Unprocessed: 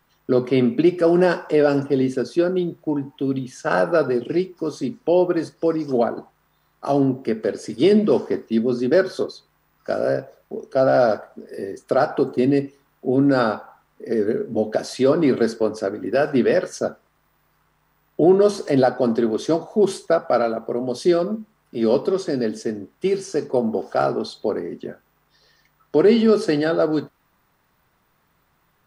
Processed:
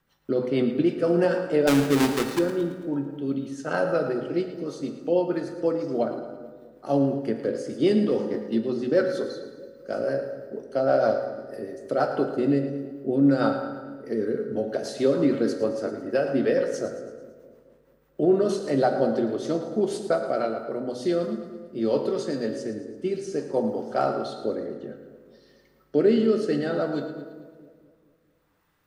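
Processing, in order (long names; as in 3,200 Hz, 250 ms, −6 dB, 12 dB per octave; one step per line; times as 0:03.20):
0:01.67–0:02.39: each half-wave held at its own peak
rotating-speaker cabinet horn 6.3 Hz, later 0.6 Hz, at 0:20.98
echo with a time of its own for lows and highs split 560 Hz, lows 219 ms, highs 111 ms, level −12 dB
convolution reverb RT60 1.4 s, pre-delay 3 ms, DRR 5.5 dB
level −4.5 dB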